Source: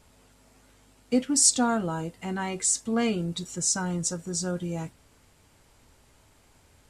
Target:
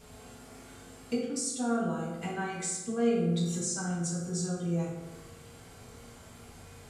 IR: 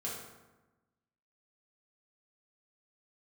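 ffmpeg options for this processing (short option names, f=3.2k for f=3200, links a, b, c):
-filter_complex "[0:a]acompressor=threshold=-42dB:ratio=5[a];[1:a]atrim=start_sample=2205[b];[a][b]afir=irnorm=-1:irlink=0,volume=7.5dB"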